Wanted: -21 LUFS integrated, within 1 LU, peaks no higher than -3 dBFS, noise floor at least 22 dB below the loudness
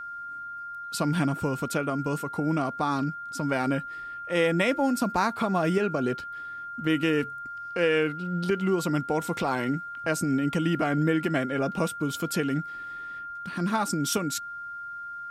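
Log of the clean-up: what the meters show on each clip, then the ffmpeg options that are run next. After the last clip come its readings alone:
steady tone 1.4 kHz; tone level -35 dBFS; loudness -28.0 LUFS; peak level -11.0 dBFS; loudness target -21.0 LUFS
-> -af "bandreject=f=1400:w=30"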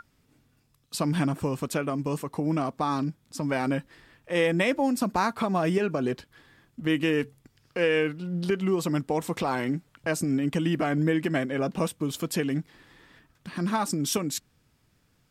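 steady tone not found; loudness -28.0 LUFS; peak level -12.0 dBFS; loudness target -21.0 LUFS
-> -af "volume=2.24"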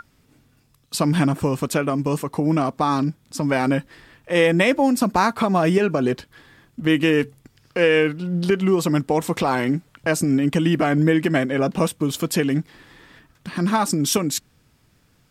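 loudness -21.0 LUFS; peak level -5.0 dBFS; noise floor -60 dBFS

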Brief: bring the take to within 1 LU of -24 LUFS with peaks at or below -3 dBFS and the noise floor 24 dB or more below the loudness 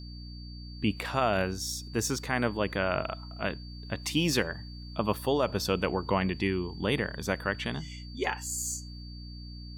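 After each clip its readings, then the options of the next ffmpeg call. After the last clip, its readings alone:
hum 60 Hz; highest harmonic 300 Hz; hum level -41 dBFS; steady tone 4.6 kHz; tone level -49 dBFS; loudness -30.5 LUFS; peak level -12.5 dBFS; loudness target -24.0 LUFS
-> -af "bandreject=f=60:t=h:w=6,bandreject=f=120:t=h:w=6,bandreject=f=180:t=h:w=6,bandreject=f=240:t=h:w=6,bandreject=f=300:t=h:w=6"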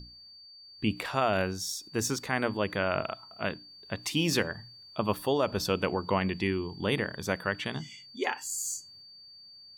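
hum not found; steady tone 4.6 kHz; tone level -49 dBFS
-> -af "bandreject=f=4600:w=30"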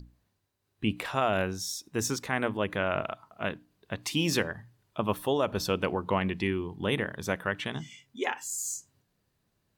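steady tone not found; loudness -31.0 LUFS; peak level -12.5 dBFS; loudness target -24.0 LUFS
-> -af "volume=2.24"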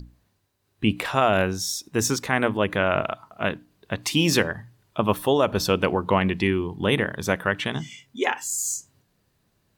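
loudness -24.0 LUFS; peak level -5.5 dBFS; noise floor -70 dBFS

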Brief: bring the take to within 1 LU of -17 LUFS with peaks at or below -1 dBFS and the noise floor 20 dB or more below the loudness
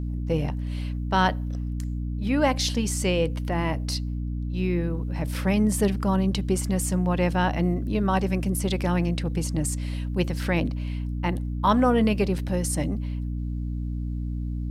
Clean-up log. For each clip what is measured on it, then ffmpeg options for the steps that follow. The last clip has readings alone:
hum 60 Hz; highest harmonic 300 Hz; hum level -26 dBFS; loudness -26.0 LUFS; peak level -8.5 dBFS; loudness target -17.0 LUFS
-> -af "bandreject=f=60:t=h:w=4,bandreject=f=120:t=h:w=4,bandreject=f=180:t=h:w=4,bandreject=f=240:t=h:w=4,bandreject=f=300:t=h:w=4"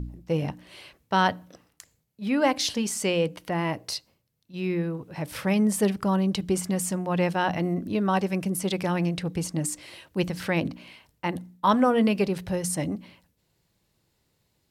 hum not found; loudness -26.5 LUFS; peak level -9.0 dBFS; loudness target -17.0 LUFS
-> -af "volume=2.99,alimiter=limit=0.891:level=0:latency=1"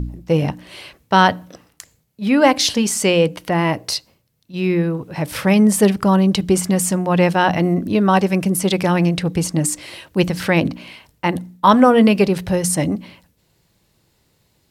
loudness -17.0 LUFS; peak level -1.0 dBFS; noise floor -63 dBFS

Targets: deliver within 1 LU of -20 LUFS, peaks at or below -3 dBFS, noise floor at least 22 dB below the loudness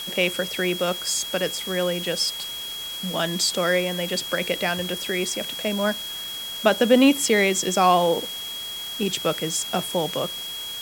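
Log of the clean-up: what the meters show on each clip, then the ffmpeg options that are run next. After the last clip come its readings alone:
steady tone 3.3 kHz; tone level -31 dBFS; noise floor -33 dBFS; noise floor target -45 dBFS; loudness -23.0 LUFS; peak level -4.0 dBFS; loudness target -20.0 LUFS
-> -af "bandreject=f=3300:w=30"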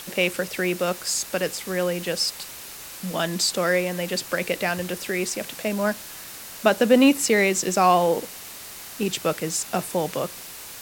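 steady tone not found; noise floor -39 dBFS; noise floor target -46 dBFS
-> -af "afftdn=nr=7:nf=-39"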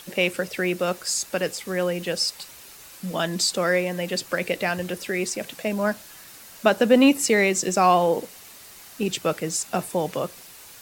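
noise floor -45 dBFS; noise floor target -46 dBFS
-> -af "afftdn=nr=6:nf=-45"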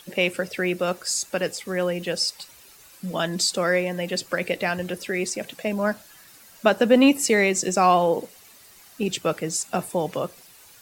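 noise floor -50 dBFS; loudness -23.5 LUFS; peak level -4.0 dBFS; loudness target -20.0 LUFS
-> -af "volume=1.5,alimiter=limit=0.708:level=0:latency=1"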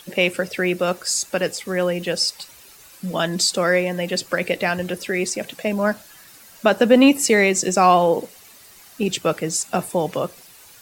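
loudness -20.0 LUFS; peak level -3.0 dBFS; noise floor -47 dBFS

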